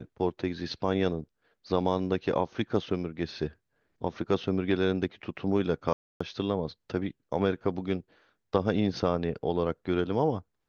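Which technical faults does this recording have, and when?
5.93–6.21 gap 0.275 s

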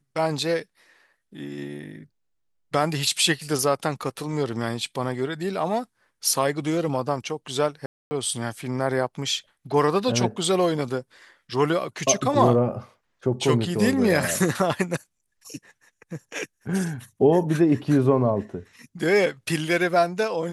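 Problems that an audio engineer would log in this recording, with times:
7.86–8.11 gap 0.25 s

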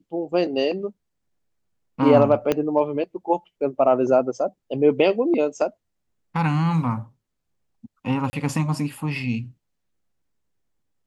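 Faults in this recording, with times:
2.52 pop -8 dBFS
8.3–8.33 gap 30 ms

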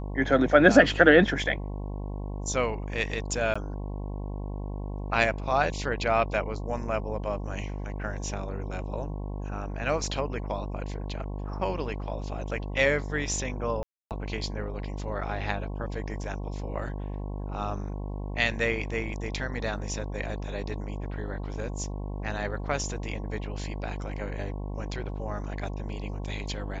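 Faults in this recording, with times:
buzz 50 Hz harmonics 22 -34 dBFS
3.54–3.56 gap 15 ms
13.83–14.11 gap 0.278 s

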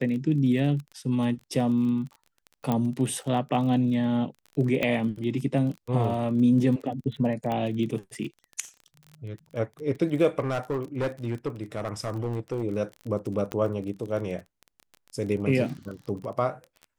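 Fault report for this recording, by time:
crackle 26/s -34 dBFS
2.72 pop -14 dBFS
4.83 pop -14 dBFS
7.52 pop -18 dBFS
10.39–12.64 clipped -23.5 dBFS
13.52 pop -16 dBFS

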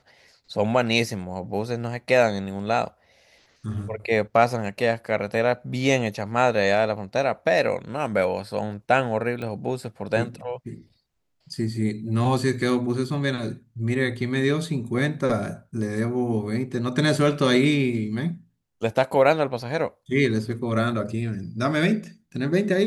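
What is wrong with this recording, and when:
9.42 pop -21 dBFS

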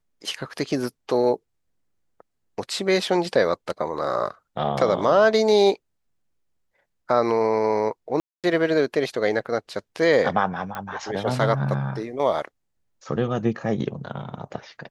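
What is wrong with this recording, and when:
8.2–8.44 gap 0.237 s
10.75 pop -17 dBFS

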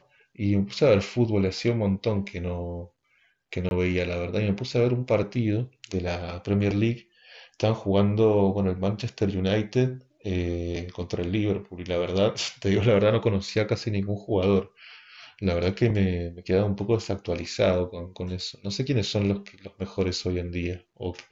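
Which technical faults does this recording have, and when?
3.69–3.71 gap 21 ms

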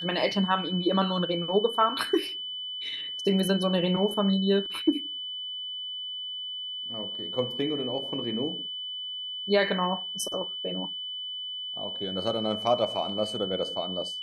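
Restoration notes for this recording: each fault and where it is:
tone 3000 Hz -33 dBFS

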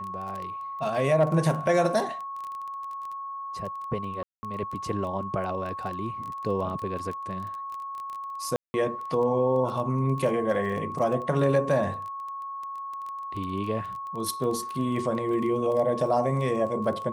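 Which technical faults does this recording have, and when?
crackle 14/s -32 dBFS
tone 1100 Hz -33 dBFS
4.23–4.43 gap 0.2 s
8.56–8.74 gap 0.18 s

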